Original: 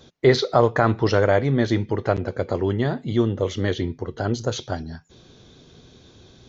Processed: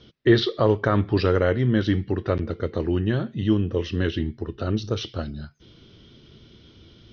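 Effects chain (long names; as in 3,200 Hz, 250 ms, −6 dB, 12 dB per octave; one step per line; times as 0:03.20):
low-pass filter 5,600 Hz 24 dB per octave
parametric band 880 Hz −8 dB 1 octave
speed change −9%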